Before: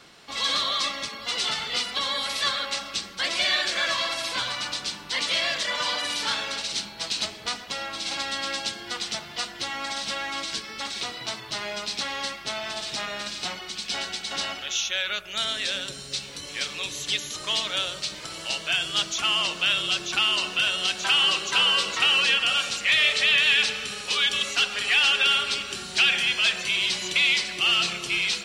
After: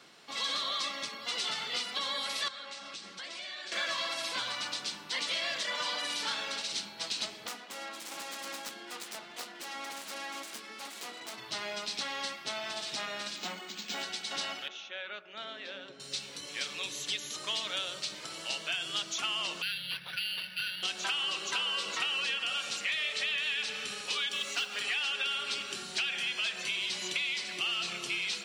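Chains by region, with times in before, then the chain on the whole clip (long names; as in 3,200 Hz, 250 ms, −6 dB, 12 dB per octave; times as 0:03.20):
0:02.48–0:03.72: low-pass filter 9,500 Hz 24 dB per octave + downward compressor 5 to 1, threshold −35 dBFS
0:07.47–0:11.38: phase distortion by the signal itself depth 0.29 ms + high-pass filter 190 Hz 24 dB per octave + high-shelf EQ 6,400 Hz −12 dB
0:13.36–0:14.03: low shelf with overshoot 160 Hz −6 dB, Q 3 + linearly interpolated sample-rate reduction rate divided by 4×
0:14.68–0:16.00: high-pass filter 230 Hz + head-to-tape spacing loss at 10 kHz 35 dB
0:19.62–0:20.83: linear-phase brick-wall band-stop 190–1,400 Hz + high-frequency loss of the air 86 metres + linearly interpolated sample-rate reduction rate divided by 6×
0:24.29–0:24.81: high-pass filter 97 Hz + noise that follows the level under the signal 27 dB
whole clip: high-pass filter 160 Hz 12 dB per octave; downward compressor, threshold −24 dBFS; level −5.5 dB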